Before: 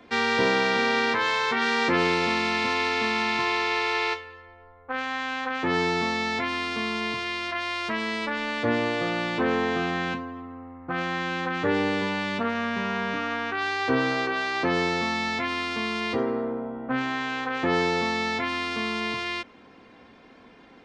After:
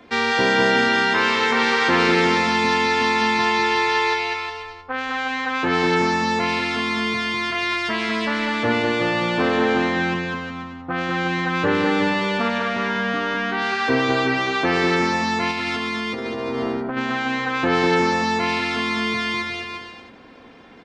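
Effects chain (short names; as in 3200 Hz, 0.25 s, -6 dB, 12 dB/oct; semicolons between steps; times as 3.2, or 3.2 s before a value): bouncing-ball echo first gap 0.2 s, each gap 0.8×, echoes 5; 15.51–16.97 negative-ratio compressor -29 dBFS, ratio -1; gain +3.5 dB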